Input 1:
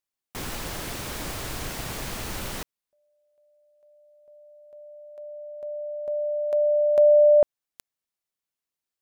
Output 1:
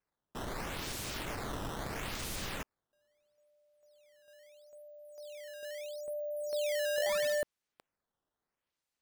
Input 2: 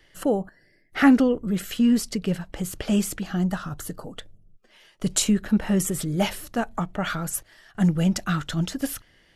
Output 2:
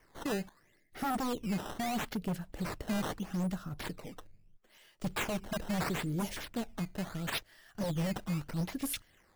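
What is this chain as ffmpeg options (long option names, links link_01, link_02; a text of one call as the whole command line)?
ffmpeg -i in.wav -filter_complex "[0:a]highshelf=frequency=9400:gain=9,acrossover=split=600|5300[link_01][link_02][link_03];[link_02]acompressor=threshold=-42dB:ratio=5:attack=1.7:release=118:detection=peak[link_04];[link_01][link_04][link_03]amix=inputs=3:normalize=0,acrusher=samples=11:mix=1:aa=0.000001:lfo=1:lforange=17.6:lforate=0.76,aeval=exprs='0.1*(abs(mod(val(0)/0.1+3,4)-2)-1)':channel_layout=same,volume=-7.5dB" out.wav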